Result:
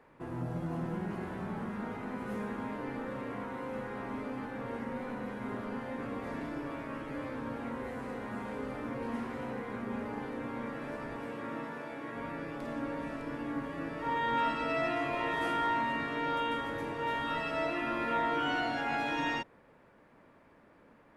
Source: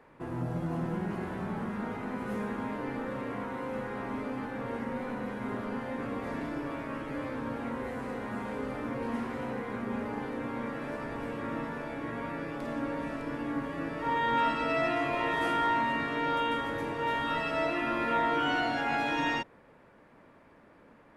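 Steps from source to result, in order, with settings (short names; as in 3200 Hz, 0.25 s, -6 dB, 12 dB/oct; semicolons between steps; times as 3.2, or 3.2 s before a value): 11.15–12.15 HPF 130 Hz -> 280 Hz 6 dB/oct; gain -3 dB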